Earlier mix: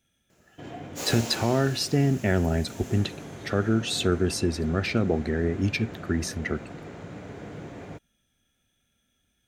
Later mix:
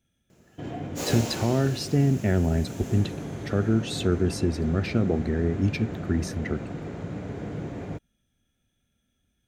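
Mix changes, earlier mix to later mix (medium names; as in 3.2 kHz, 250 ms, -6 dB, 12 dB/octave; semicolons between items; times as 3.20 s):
speech -5.5 dB; master: add bass shelf 470 Hz +8 dB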